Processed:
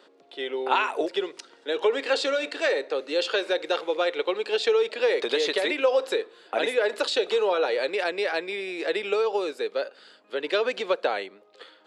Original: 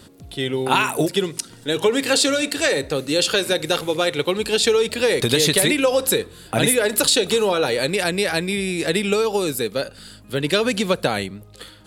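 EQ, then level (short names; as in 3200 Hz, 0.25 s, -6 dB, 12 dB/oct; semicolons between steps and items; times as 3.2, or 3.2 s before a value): HPF 400 Hz 24 dB/oct; tape spacing loss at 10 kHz 37 dB; high shelf 3100 Hz +9.5 dB; -1.0 dB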